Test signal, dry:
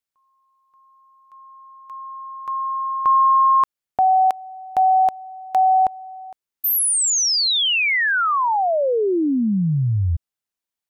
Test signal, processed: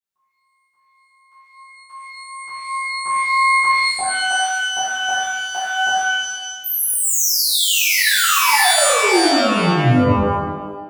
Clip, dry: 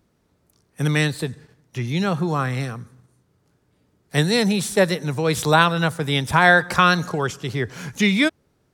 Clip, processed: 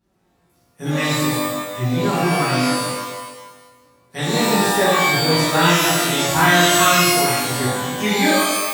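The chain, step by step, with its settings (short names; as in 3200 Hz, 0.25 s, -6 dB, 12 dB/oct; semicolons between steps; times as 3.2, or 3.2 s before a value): flange 0.34 Hz, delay 5 ms, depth 3.6 ms, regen +54%; thinning echo 0.369 s, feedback 24%, high-pass 370 Hz, level -21 dB; shimmer reverb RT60 1.1 s, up +12 st, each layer -2 dB, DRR -11.5 dB; gain -7.5 dB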